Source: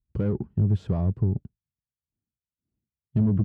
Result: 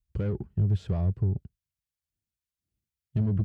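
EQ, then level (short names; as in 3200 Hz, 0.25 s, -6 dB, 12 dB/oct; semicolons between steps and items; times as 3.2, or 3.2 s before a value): ten-band EQ 125 Hz -4 dB, 250 Hz -10 dB, 500 Hz -3 dB, 1000 Hz -7 dB; +2.5 dB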